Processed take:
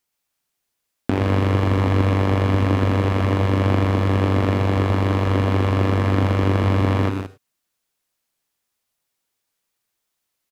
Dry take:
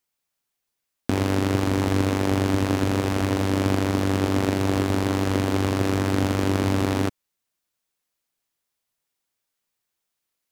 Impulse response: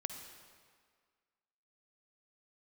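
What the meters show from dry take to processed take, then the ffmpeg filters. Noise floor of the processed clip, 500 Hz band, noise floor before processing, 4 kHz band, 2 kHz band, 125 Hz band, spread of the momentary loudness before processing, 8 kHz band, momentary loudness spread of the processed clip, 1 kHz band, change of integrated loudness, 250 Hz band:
−78 dBFS, +2.5 dB, −81 dBFS, −1.0 dB, +2.0 dB, +7.0 dB, 1 LU, can't be measured, 2 LU, +3.5 dB, +3.5 dB, +1.0 dB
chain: -filter_complex "[0:a]aecho=1:1:122.4|174.9:0.447|0.316,asplit=2[link_01][link_02];[1:a]atrim=start_sample=2205,atrim=end_sample=3528,asetrate=30870,aresample=44100[link_03];[link_02][link_03]afir=irnorm=-1:irlink=0,volume=-3dB[link_04];[link_01][link_04]amix=inputs=2:normalize=0,acrossover=split=3500[link_05][link_06];[link_06]acompressor=threshold=-44dB:ratio=4:attack=1:release=60[link_07];[link_05][link_07]amix=inputs=2:normalize=0,volume=-2dB"

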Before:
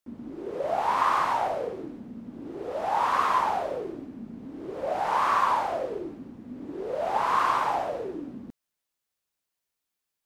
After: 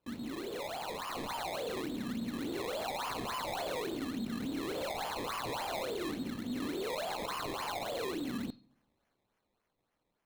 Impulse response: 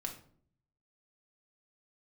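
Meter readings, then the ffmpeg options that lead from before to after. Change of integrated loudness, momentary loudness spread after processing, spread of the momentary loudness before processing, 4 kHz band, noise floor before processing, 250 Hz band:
−10.5 dB, 3 LU, 17 LU, +2.0 dB, −85 dBFS, +0.5 dB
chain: -filter_complex "[0:a]equalizer=frequency=3200:width_type=o:width=0.48:gain=10.5,alimiter=level_in=11dB:limit=-24dB:level=0:latency=1:release=19,volume=-11dB,dynaudnorm=framelen=150:gausssize=17:maxgain=3dB,acrusher=samples=21:mix=1:aa=0.000001:lfo=1:lforange=21:lforate=3.5,asplit=2[link_01][link_02];[link_02]lowpass=frequency=4200:width_type=q:width=16[link_03];[1:a]atrim=start_sample=2205[link_04];[link_03][link_04]afir=irnorm=-1:irlink=0,volume=-14dB[link_05];[link_01][link_05]amix=inputs=2:normalize=0"

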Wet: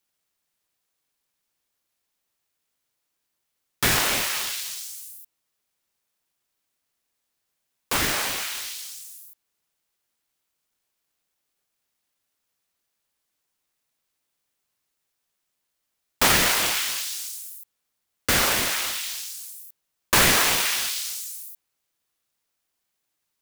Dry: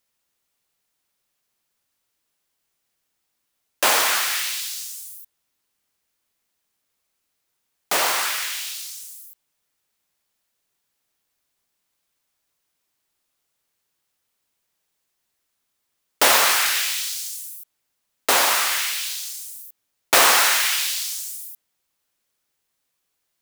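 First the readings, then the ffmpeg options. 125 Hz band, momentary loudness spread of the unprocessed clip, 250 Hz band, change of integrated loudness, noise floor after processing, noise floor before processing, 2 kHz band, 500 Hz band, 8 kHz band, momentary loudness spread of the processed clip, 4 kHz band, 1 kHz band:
can't be measured, 19 LU, +6.5 dB, −3.0 dB, −79 dBFS, −76 dBFS, −3.0 dB, −3.5 dB, −3.0 dB, 19 LU, −3.0 dB, −5.5 dB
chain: -af "aeval=exprs='val(0)*sin(2*PI*620*n/s+620*0.5/3.6*sin(2*PI*3.6*n/s))':channel_layout=same"

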